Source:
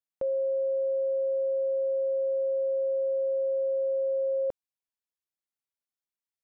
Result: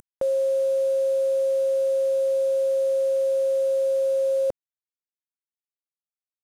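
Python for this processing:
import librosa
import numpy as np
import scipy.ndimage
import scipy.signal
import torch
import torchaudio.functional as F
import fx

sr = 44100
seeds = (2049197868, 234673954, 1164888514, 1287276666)

y = fx.cvsd(x, sr, bps=64000)
y = fx.env_flatten(y, sr, amount_pct=50)
y = y * 10.0 ** (5.5 / 20.0)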